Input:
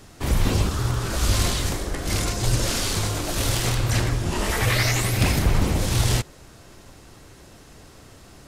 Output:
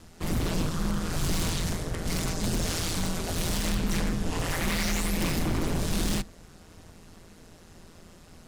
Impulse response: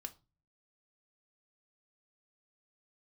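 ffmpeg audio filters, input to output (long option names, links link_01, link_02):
-filter_complex "[0:a]aeval=exprs='val(0)*sin(2*PI*84*n/s)':channel_layout=same,aeval=exprs='0.106*(abs(mod(val(0)/0.106+3,4)-2)-1)':channel_layout=same,asplit=2[link_01][link_02];[1:a]atrim=start_sample=2205,lowshelf=frequency=440:gain=11[link_03];[link_02][link_03]afir=irnorm=-1:irlink=0,volume=-10.5dB[link_04];[link_01][link_04]amix=inputs=2:normalize=0,volume=-4dB"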